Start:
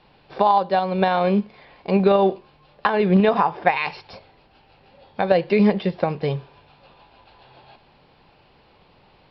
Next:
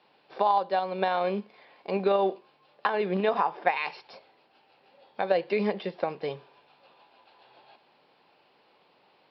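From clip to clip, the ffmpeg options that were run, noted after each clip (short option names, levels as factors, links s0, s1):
-af "highpass=300,volume=0.473"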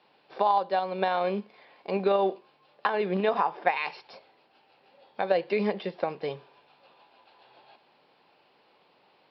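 -af anull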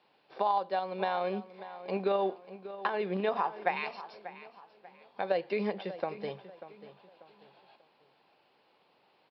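-filter_complex "[0:a]asplit=2[s0][s1];[s1]adelay=590,lowpass=f=3600:p=1,volume=0.2,asplit=2[s2][s3];[s3]adelay=590,lowpass=f=3600:p=1,volume=0.35,asplit=2[s4][s5];[s5]adelay=590,lowpass=f=3600:p=1,volume=0.35[s6];[s0][s2][s4][s6]amix=inputs=4:normalize=0,volume=0.562"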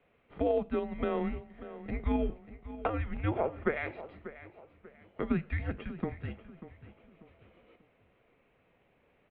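-af "highpass=f=330:t=q:w=0.5412,highpass=f=330:t=q:w=1.307,lowpass=f=3200:t=q:w=0.5176,lowpass=f=3200:t=q:w=0.7071,lowpass=f=3200:t=q:w=1.932,afreqshift=-340"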